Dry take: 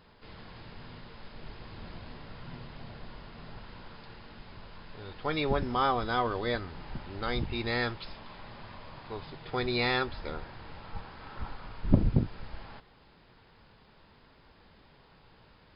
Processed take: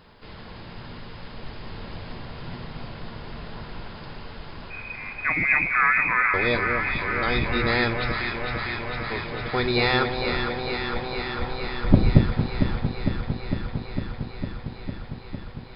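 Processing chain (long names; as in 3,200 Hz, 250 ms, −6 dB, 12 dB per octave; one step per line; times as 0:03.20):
0:04.70–0:06.34: voice inversion scrambler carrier 2,500 Hz
delay that swaps between a low-pass and a high-pass 227 ms, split 830 Hz, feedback 89%, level −5 dB
level +6.5 dB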